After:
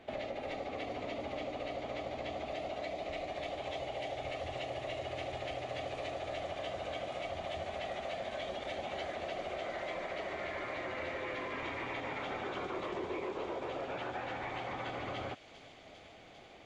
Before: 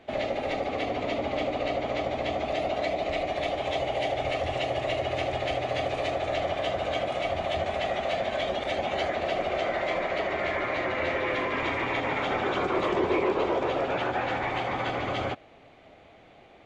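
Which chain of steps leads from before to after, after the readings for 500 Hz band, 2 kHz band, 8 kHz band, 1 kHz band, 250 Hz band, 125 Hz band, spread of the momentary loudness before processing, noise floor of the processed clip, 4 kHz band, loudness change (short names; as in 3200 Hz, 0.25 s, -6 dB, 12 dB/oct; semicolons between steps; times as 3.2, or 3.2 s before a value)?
-11.0 dB, -11.0 dB, n/a, -11.0 dB, -11.5 dB, -11.0 dB, 3 LU, -55 dBFS, -10.0 dB, -11.0 dB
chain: compressor 3:1, threshold -37 dBFS, peak gain reduction 12 dB; on a send: thin delay 0.398 s, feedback 83%, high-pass 5200 Hz, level -3.5 dB; on the sum: gain -2.5 dB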